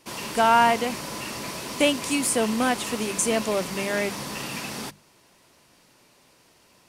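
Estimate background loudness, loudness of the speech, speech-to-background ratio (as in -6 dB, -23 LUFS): -32.5 LUFS, -24.0 LUFS, 8.5 dB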